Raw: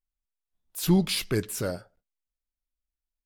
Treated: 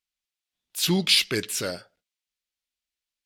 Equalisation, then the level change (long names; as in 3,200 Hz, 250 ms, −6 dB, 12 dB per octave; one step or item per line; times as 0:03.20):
meter weighting curve D
0.0 dB